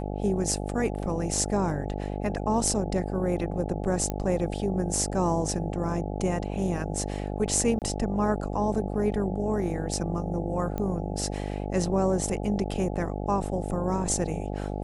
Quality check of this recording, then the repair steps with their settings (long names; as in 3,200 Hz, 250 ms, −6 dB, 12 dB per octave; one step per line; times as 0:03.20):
mains buzz 50 Hz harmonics 17 −32 dBFS
0:04.10: click −16 dBFS
0:07.79–0:07.82: drop-out 28 ms
0:10.78: click −19 dBFS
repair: click removal
hum removal 50 Hz, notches 17
repair the gap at 0:07.79, 28 ms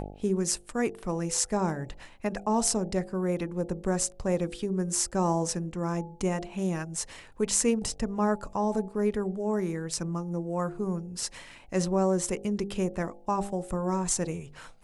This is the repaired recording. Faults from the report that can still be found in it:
none of them is left